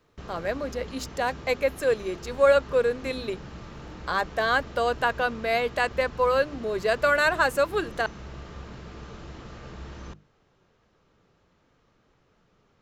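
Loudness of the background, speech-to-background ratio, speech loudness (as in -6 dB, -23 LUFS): -42.5 LUFS, 17.0 dB, -25.5 LUFS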